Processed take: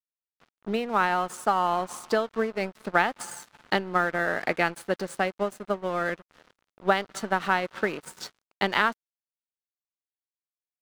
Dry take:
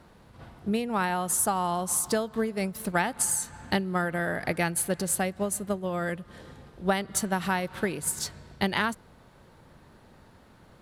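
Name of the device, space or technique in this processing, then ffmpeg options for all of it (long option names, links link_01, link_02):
pocket radio on a weak battery: -af "highpass=280,lowpass=4000,aeval=exprs='sgn(val(0))*max(abs(val(0))-0.00531,0)':channel_layout=same,equalizer=frequency=1300:width_type=o:width=0.36:gain=4,volume=4dB"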